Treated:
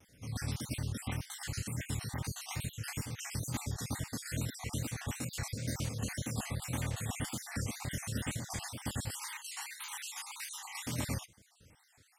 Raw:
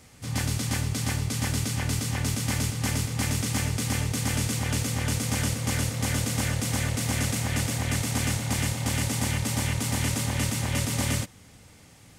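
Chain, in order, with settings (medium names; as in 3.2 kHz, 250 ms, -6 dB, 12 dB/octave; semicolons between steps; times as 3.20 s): random holes in the spectrogram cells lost 52%; 9.11–10.86 s: steep high-pass 820 Hz 96 dB/octave; wow and flutter 110 cents; trim -8 dB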